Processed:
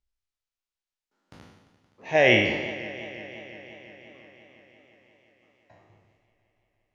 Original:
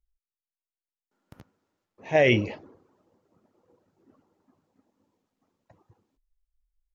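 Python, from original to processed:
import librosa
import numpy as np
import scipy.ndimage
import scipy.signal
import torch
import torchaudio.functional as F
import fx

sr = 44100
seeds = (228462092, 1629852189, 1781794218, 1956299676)

y = fx.spec_trails(x, sr, decay_s=0.94)
y = scipy.signal.sosfilt(scipy.signal.butter(2, 5800.0, 'lowpass', fs=sr, output='sos'), y)
y = fx.tilt_eq(y, sr, slope=1.5)
y = fx.echo_warbled(y, sr, ms=173, feedback_pct=80, rate_hz=2.8, cents=79, wet_db=-16.0)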